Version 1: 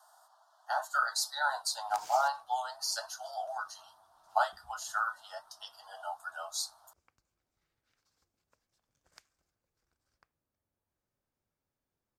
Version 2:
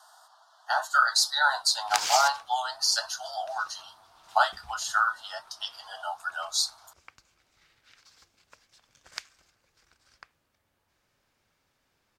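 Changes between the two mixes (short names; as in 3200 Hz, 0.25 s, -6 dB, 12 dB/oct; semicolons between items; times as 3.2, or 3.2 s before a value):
background +10.5 dB; master: add bell 3000 Hz +12.5 dB 3 oct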